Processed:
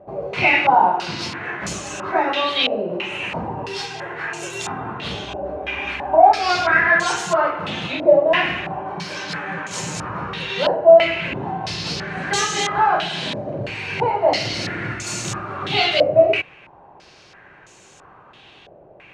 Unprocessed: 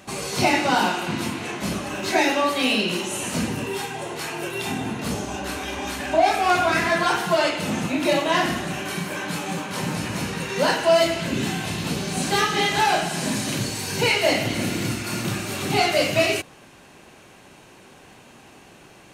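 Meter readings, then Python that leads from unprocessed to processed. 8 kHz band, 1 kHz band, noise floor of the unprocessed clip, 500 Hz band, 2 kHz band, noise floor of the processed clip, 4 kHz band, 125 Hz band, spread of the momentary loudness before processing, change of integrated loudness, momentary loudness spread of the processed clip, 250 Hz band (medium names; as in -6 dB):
-1.5 dB, +4.5 dB, -49 dBFS, +5.0 dB, +3.5 dB, -48 dBFS, +1.0 dB, -2.0 dB, 9 LU, +3.0 dB, 14 LU, -4.5 dB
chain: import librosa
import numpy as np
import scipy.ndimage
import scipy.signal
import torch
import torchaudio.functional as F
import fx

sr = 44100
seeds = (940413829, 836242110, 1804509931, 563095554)

y = fx.peak_eq(x, sr, hz=240.0, db=-9.0, octaves=0.54)
y = fx.filter_held_lowpass(y, sr, hz=3.0, low_hz=610.0, high_hz=7000.0)
y = y * librosa.db_to_amplitude(-1.0)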